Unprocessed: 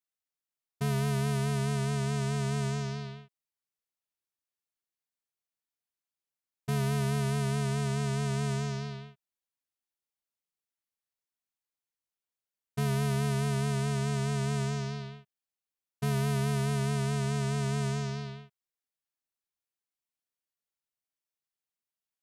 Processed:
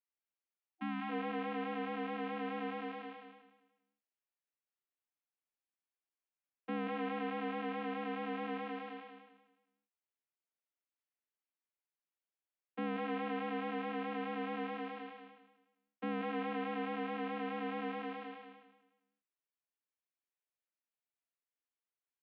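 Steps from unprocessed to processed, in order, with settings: feedback delay 184 ms, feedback 31%, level -5 dB; mistuned SSB +67 Hz 170–2900 Hz; spectral selection erased 0.70–1.10 s, 330–740 Hz; trim -4.5 dB

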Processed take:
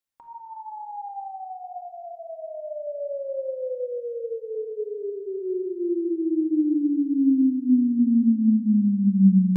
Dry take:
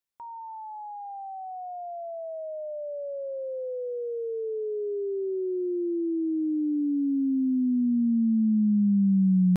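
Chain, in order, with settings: simulated room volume 2900 m³, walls mixed, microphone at 2.2 m; trim -1.5 dB

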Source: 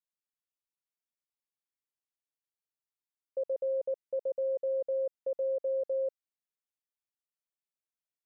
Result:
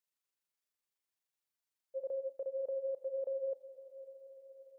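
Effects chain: bass shelf 470 Hz -5.5 dB; de-hum 273.4 Hz, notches 29; peak limiter -37 dBFS, peak gain reduction 8 dB; granular stretch 0.58×, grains 84 ms; on a send: echo that smears into a reverb 573 ms, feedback 54%, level -16 dB; on the sum: trim +4.5 dB

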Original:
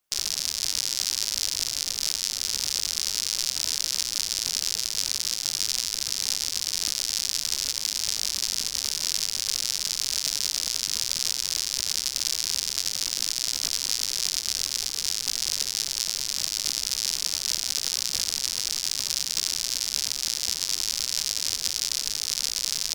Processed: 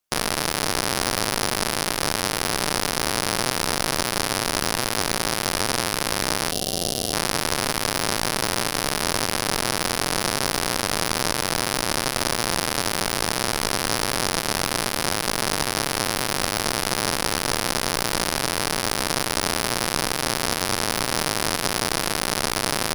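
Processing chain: Chebyshev shaper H 4 -11 dB, 8 -11 dB, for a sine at -4.5 dBFS; time-frequency box 6.52–7.14 s, 780–2700 Hz -15 dB; trim -1.5 dB

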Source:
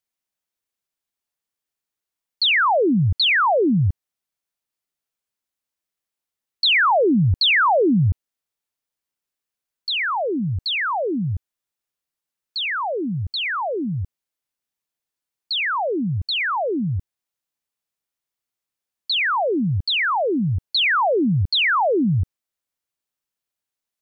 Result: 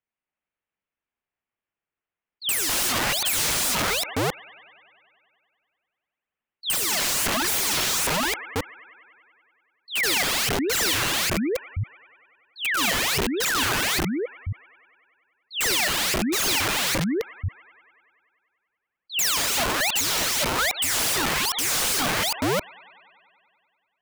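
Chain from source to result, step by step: chunks repeated in reverse 269 ms, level -1.5 dB; steep low-pass 2.8 kHz 36 dB/octave; on a send: feedback echo behind a high-pass 96 ms, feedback 75%, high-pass 1.6 kHz, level -11 dB; on the sum: dynamic bell 810 Hz, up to +3 dB, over -27 dBFS, Q 0.91; spectral gate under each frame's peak -25 dB strong; integer overflow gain 19 dB

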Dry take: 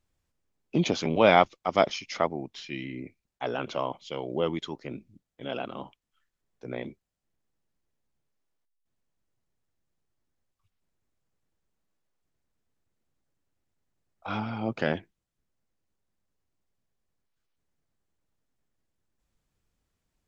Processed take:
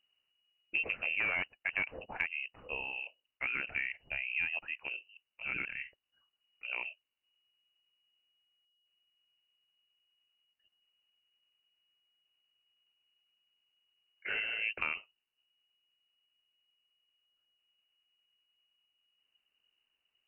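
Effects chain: wavefolder -13.5 dBFS; frequency inversion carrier 2.9 kHz; compression, threshold -27 dBFS, peak gain reduction 9 dB; trim -3 dB

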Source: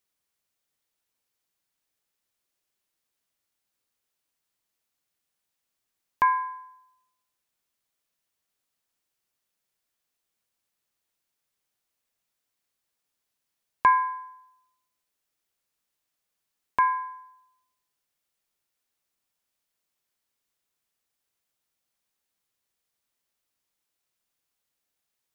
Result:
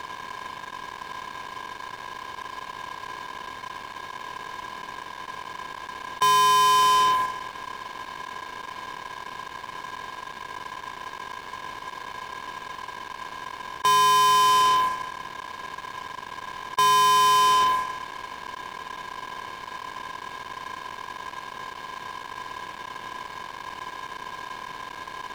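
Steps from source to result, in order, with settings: spectral levelling over time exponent 0.2; band-stop 1.2 kHz, Q 10; gate -27 dBFS, range -21 dB; peak limiter -18.5 dBFS, peak gain reduction 10.5 dB; waveshaping leveller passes 5; trim +1.5 dB

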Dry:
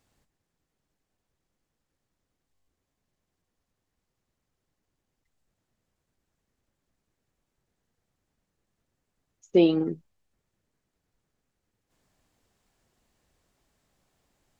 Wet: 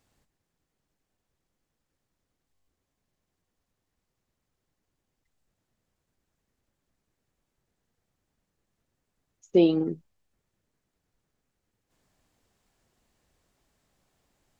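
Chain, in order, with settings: dynamic bell 1.7 kHz, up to -6 dB, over -43 dBFS, Q 1

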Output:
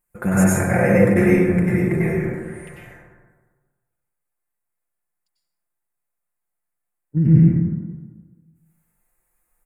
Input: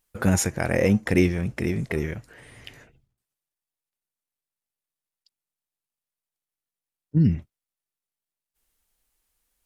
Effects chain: high-order bell 4.2 kHz -14.5 dB 1.3 oct; comb 5.7 ms, depth 53%; plate-style reverb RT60 1.4 s, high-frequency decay 0.4×, pre-delay 85 ms, DRR -8 dB; trim -3 dB

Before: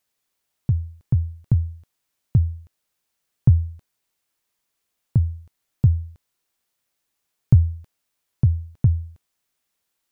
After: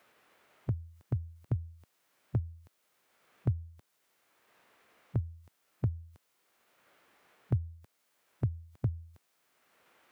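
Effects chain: high-pass 330 Hz 6 dB/octave; formant shift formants -4 st; three bands compressed up and down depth 70%

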